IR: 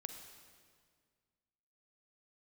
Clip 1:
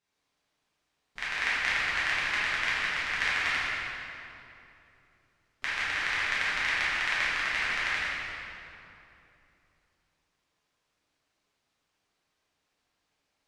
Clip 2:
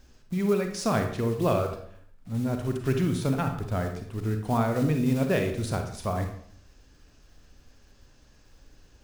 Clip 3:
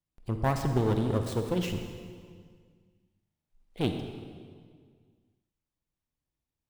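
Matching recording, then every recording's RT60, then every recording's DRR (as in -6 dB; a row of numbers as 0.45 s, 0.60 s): 3; 2.9 s, 0.65 s, 1.9 s; -10.5 dB, 5.0 dB, 5.5 dB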